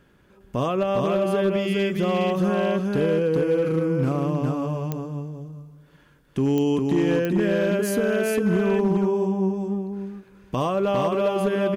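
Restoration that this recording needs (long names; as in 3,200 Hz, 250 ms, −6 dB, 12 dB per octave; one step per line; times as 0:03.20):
clipped peaks rebuilt −15 dBFS
click removal
echo removal 406 ms −3 dB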